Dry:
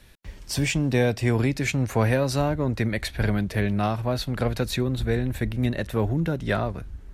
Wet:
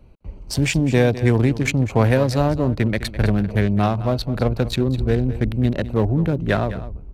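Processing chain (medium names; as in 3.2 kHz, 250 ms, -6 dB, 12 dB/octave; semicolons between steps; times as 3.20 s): local Wiener filter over 25 samples; delay 206 ms -14.5 dB; trim +5.5 dB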